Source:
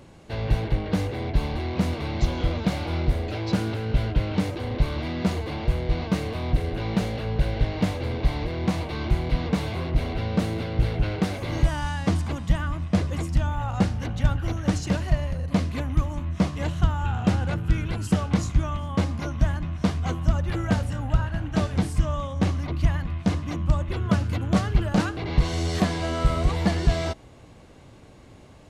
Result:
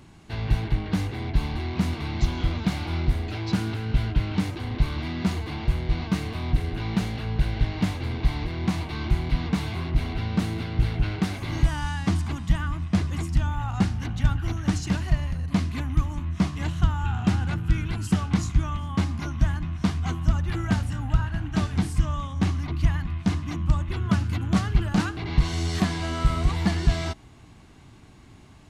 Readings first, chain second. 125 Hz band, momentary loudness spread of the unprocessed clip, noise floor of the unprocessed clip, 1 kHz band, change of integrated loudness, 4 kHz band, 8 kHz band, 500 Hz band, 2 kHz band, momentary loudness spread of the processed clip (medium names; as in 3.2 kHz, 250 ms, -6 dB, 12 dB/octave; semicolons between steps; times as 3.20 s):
0.0 dB, 3 LU, -48 dBFS, -2.0 dB, -0.5 dB, 0.0 dB, 0.0 dB, -7.0 dB, -0.5 dB, 3 LU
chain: peaking EQ 530 Hz -14.5 dB 0.5 oct